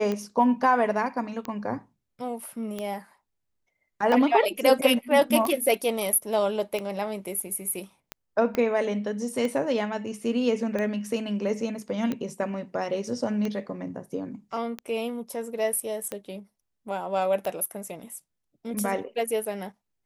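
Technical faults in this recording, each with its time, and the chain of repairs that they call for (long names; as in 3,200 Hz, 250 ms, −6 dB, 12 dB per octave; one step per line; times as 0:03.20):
scratch tick 45 rpm −17 dBFS
0:08.55: click −15 dBFS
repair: click removal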